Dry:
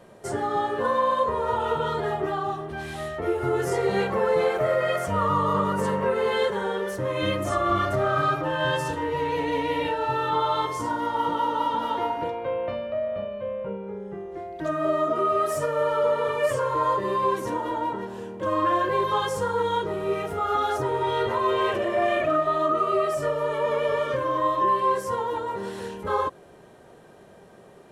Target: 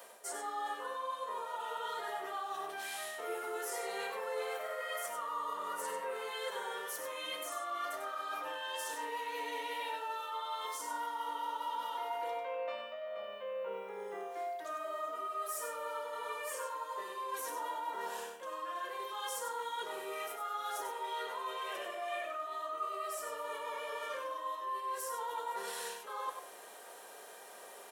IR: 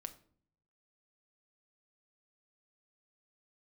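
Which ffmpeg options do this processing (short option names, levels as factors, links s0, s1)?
-filter_complex "[0:a]highpass=620,aemphasis=mode=production:type=bsi,areverse,acompressor=threshold=0.01:ratio=8,areverse,aecho=1:1:96:0.447[s0];[1:a]atrim=start_sample=2205,asetrate=61740,aresample=44100[s1];[s0][s1]afir=irnorm=-1:irlink=0,volume=2.66"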